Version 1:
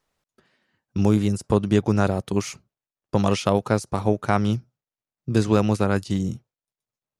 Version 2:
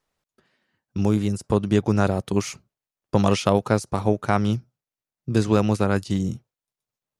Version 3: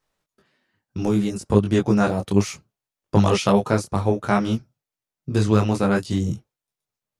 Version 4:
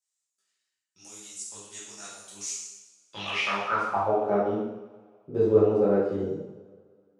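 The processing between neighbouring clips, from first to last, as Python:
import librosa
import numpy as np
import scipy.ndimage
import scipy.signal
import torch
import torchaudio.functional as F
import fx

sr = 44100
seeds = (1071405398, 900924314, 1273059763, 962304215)

y1 = fx.rider(x, sr, range_db=10, speed_s=2.0)
y2 = fx.detune_double(y1, sr, cents=22)
y2 = y2 * 10.0 ** (5.0 / 20.0)
y3 = fx.filter_sweep_bandpass(y2, sr, from_hz=7400.0, to_hz=460.0, start_s=2.68, end_s=4.3, q=3.8)
y3 = fx.rev_double_slope(y3, sr, seeds[0], early_s=0.91, late_s=2.6, knee_db=-23, drr_db=-6.5)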